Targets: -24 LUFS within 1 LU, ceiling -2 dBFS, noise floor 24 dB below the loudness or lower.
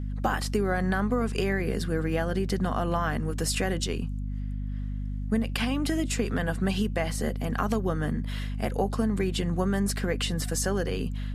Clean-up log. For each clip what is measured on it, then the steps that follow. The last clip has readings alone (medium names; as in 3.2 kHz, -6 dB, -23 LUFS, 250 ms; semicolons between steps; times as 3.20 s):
hum 50 Hz; highest harmonic 250 Hz; hum level -29 dBFS; loudness -28.5 LUFS; peak level -12.0 dBFS; loudness target -24.0 LUFS
-> de-hum 50 Hz, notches 5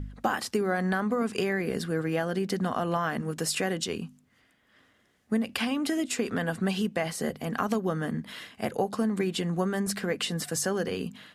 hum not found; loudness -29.5 LUFS; peak level -11.0 dBFS; loudness target -24.0 LUFS
-> trim +5.5 dB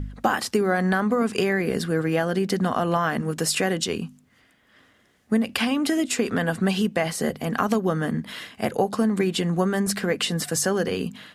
loudness -24.0 LUFS; peak level -5.5 dBFS; noise floor -61 dBFS